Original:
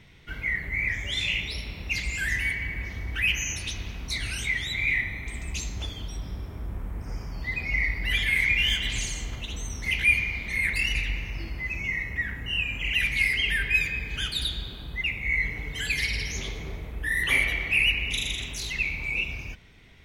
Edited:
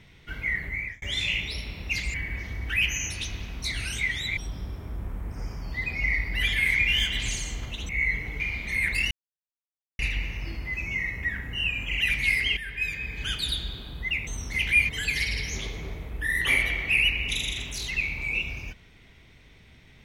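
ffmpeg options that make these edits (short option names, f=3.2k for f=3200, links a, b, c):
-filter_complex "[0:a]asplit=10[a][b][c][d][e][f][g][h][i][j];[a]atrim=end=1.02,asetpts=PTS-STARTPTS,afade=t=out:st=0.66:d=0.36[k];[b]atrim=start=1.02:end=2.142,asetpts=PTS-STARTPTS,afade=t=in:d=0.004:c=hsin[l];[c]atrim=start=2.598:end=4.832[m];[d]atrim=start=6.068:end=9.592[n];[e]atrim=start=15.198:end=15.712[o];[f]atrim=start=10.208:end=10.92,asetpts=PTS-STARTPTS,afade=t=out:st=0.708:d=0.004:c=hsin,apad=pad_dur=0.88[p];[g]atrim=start=10.92:end=13.5,asetpts=PTS-STARTPTS,afade=t=in:d=0.004:c=hsin,afade=t=out:st=2.576:d=0.004:c=hsin:silence=0.223872[q];[h]atrim=start=13.5:end=15.202,asetpts=PTS-STARTPTS,afade=t=in:d=0.73:silence=0.223872[r];[i]atrim=start=9.588:end=10.212[s];[j]atrim=start=15.708[t];[k][l]concat=n=2:v=0:a=1[u];[u][m]acrossfade=d=0.004:c1=hsin:c2=hsin[v];[v][n]acrossfade=d=0.004:c1=hsin:c2=hsin[w];[w][o]acrossfade=d=0.004:c1=hsin:c2=hsin[x];[p][q][r]concat=n=3:v=0:a=1[y];[x][y]acrossfade=d=0.004:c1=hsin:c2=hsin[z];[z][s]acrossfade=d=0.004:c1=hsin:c2=hsin[aa];[aa][t]acrossfade=d=0.004:c1=hsin:c2=hsin"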